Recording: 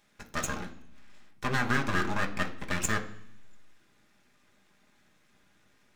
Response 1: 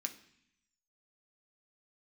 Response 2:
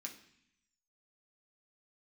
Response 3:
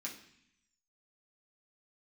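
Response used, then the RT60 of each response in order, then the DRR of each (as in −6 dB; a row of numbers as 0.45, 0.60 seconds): 1; 0.65, 0.65, 0.65 seconds; 4.5, −0.5, −4.5 decibels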